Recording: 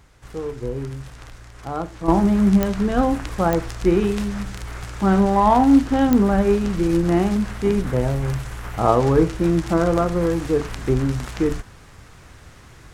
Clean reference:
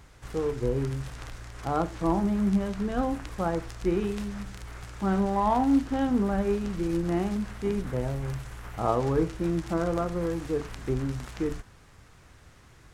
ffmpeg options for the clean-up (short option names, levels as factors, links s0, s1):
-af "adeclick=t=4,asetnsamples=n=441:p=0,asendcmd='2.08 volume volume -9dB',volume=1"